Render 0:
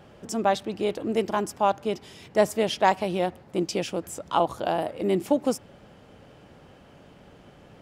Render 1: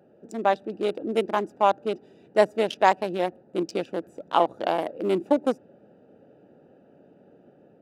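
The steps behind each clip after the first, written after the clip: local Wiener filter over 41 samples; high-pass 270 Hz 12 dB/octave; level rider gain up to 3 dB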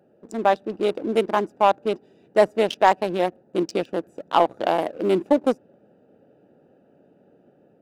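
waveshaping leveller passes 1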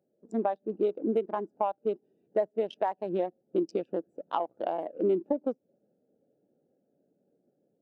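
compression 16:1, threshold -24 dBFS, peak gain reduction 14.5 dB; spectral contrast expander 1.5:1; trim -4 dB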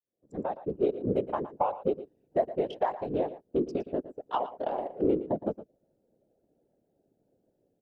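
fade-in on the opening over 0.78 s; whisper effect; delay 115 ms -14.5 dB

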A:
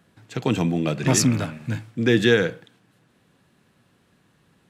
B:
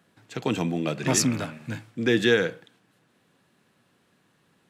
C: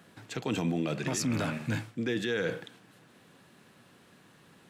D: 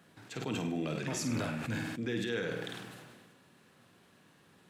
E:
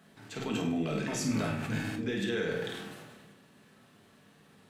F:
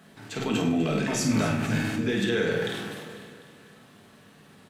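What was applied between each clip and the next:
high-pass 200 Hz 6 dB/octave; trim -2 dB
reverse; compression 16:1, threshold -30 dBFS, peak gain reduction 15.5 dB; reverse; peak limiter -28.5 dBFS, peak gain reduction 6.5 dB; trim +7 dB
flutter echo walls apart 8.7 m, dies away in 0.44 s; decay stretcher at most 31 dB/s; trim -5.5 dB
simulated room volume 330 m³, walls furnished, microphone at 1.5 m
feedback delay 249 ms, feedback 54%, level -13.5 dB; trim +6.5 dB

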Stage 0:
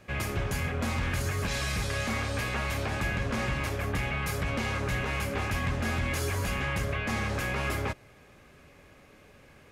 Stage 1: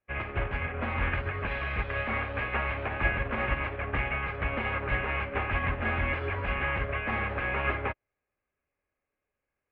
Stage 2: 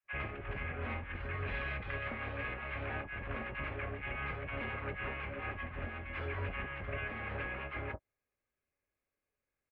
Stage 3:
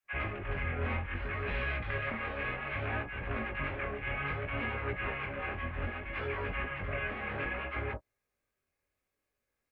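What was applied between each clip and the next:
steep low-pass 2.7 kHz 36 dB/octave; peaking EQ 160 Hz -9.5 dB 1.8 oct; upward expansion 2.5:1, over -54 dBFS; trim +8.5 dB
compressor with a negative ratio -32 dBFS, ratio -0.5; doubling 21 ms -13.5 dB; bands offset in time highs, lows 40 ms, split 890 Hz; trim -6.5 dB
chorus 0.63 Hz, delay 16.5 ms, depth 7.3 ms; trim +7 dB

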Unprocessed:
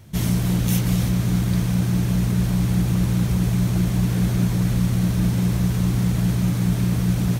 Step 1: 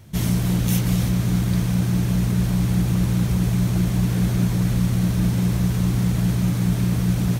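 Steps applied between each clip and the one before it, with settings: no audible change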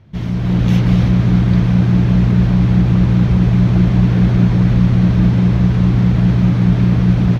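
distance through air 250 m; level rider gain up to 11.5 dB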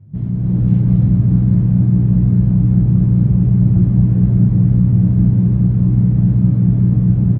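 band-pass filter 130 Hz, Q 1.5; doubling 20 ms -5.5 dB; trim +4.5 dB

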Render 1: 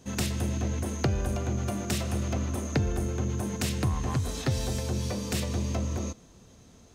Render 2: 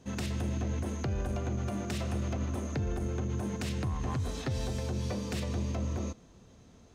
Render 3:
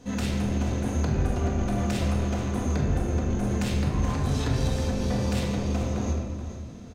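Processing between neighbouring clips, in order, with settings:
low-pass 3.8 kHz 6 dB/octave; peak limiter -22.5 dBFS, peak gain reduction 7.5 dB; trim -2 dB
saturation -31.5 dBFS, distortion -14 dB; delay 430 ms -11.5 dB; simulated room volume 800 m³, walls mixed, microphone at 1.9 m; trim +5.5 dB

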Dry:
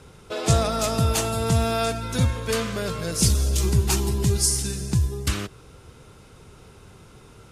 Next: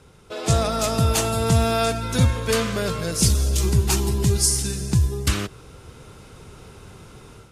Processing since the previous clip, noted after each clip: level rider gain up to 8 dB; trim -3.5 dB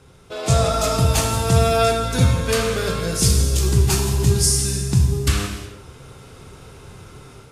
gated-style reverb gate 390 ms falling, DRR 1.5 dB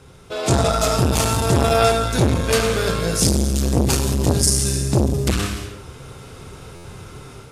buffer glitch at 6.75 s, times 7; transformer saturation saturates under 520 Hz; trim +3.5 dB

